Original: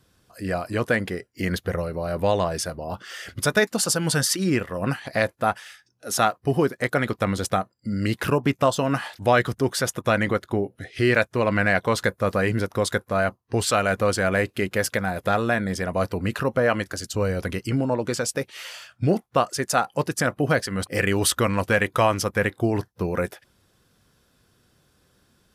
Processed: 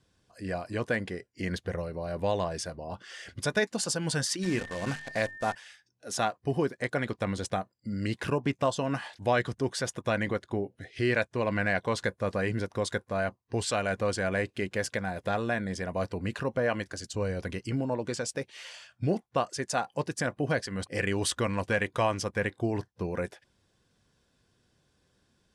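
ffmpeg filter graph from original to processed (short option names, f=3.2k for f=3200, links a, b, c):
-filter_complex "[0:a]asettb=1/sr,asplit=3[a][b][c];[a]atrim=end=4.434[d];[b]atrim=start=4.43:end=5.55,asetpts=PTS-STARTPTS,afade=t=in:d=0.004:c=qsin,afade=t=out:st=1.116:d=0.004:c=qsin,bandreject=f=50:t=h:w=6,bandreject=f=100:t=h:w=6,bandreject=f=150:t=h:w=6,bandreject=f=200:t=h:w=6,bandreject=f=250:t=h:w=6,acrusher=bits=6:dc=4:mix=0:aa=0.000001,aeval=exprs='val(0)+0.0178*sin(2*PI*1800*n/s)':c=same[e];[c]atrim=start=5.546[f];[d][e]acrossfade=d=0.004:c1=hsin:c2=qsin[g];[g][f]acrossfade=d=0.004:c1=qsin:c2=hsin,lowpass=f=9.2k:w=0.5412,lowpass=f=9.2k:w=1.3066,bandreject=f=1.3k:w=7.6,volume=-7dB"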